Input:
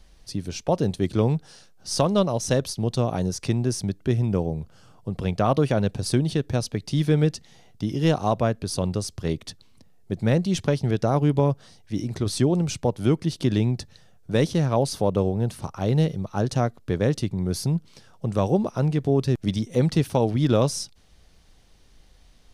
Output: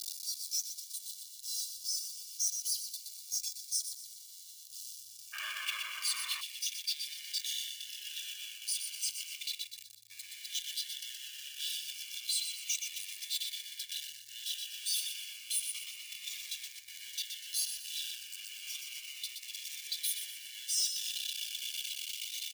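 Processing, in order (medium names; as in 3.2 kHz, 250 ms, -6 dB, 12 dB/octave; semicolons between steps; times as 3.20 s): one-bit comparator; comb 1.7 ms, depth 83%; feedback delay 122 ms, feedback 52%, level -4 dB; peak limiter -18.5 dBFS, peak gain reduction 7 dB; frequency shift -110 Hz; inverse Chebyshev high-pass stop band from 1.3 kHz, stop band 60 dB, from 5.32 s stop band from 410 Hz, from 6.40 s stop band from 870 Hz; spectral noise reduction 9 dB; Shepard-style phaser falling 0.31 Hz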